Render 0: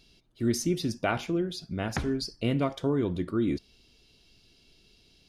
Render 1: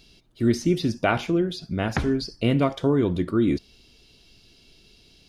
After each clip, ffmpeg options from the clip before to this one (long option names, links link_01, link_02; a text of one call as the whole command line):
ffmpeg -i in.wav -filter_complex "[0:a]acrossover=split=4500[link_01][link_02];[link_02]acompressor=threshold=-49dB:ratio=4:attack=1:release=60[link_03];[link_01][link_03]amix=inputs=2:normalize=0,volume=6dB" out.wav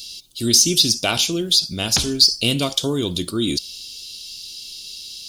ffmpeg -i in.wav -af "aexciter=amount=7.5:drive=9.8:freq=3000,volume=-1.5dB" out.wav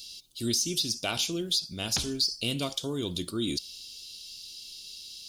ffmpeg -i in.wav -af "alimiter=limit=-7.5dB:level=0:latency=1:release=314,volume=-9dB" out.wav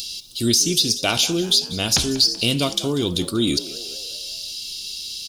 ffmpeg -i in.wav -filter_complex "[0:a]asplit=2[link_01][link_02];[link_02]acompressor=mode=upward:threshold=-32dB:ratio=2.5,volume=-2dB[link_03];[link_01][link_03]amix=inputs=2:normalize=0,asplit=6[link_04][link_05][link_06][link_07][link_08][link_09];[link_05]adelay=191,afreqshift=61,volume=-16.5dB[link_10];[link_06]adelay=382,afreqshift=122,volume=-22dB[link_11];[link_07]adelay=573,afreqshift=183,volume=-27.5dB[link_12];[link_08]adelay=764,afreqshift=244,volume=-33dB[link_13];[link_09]adelay=955,afreqshift=305,volume=-38.6dB[link_14];[link_04][link_10][link_11][link_12][link_13][link_14]amix=inputs=6:normalize=0,volume=5dB" out.wav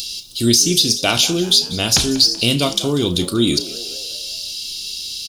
ffmpeg -i in.wav -filter_complex "[0:a]asplit=2[link_01][link_02];[link_02]adelay=34,volume=-11.5dB[link_03];[link_01][link_03]amix=inputs=2:normalize=0,volume=3.5dB" out.wav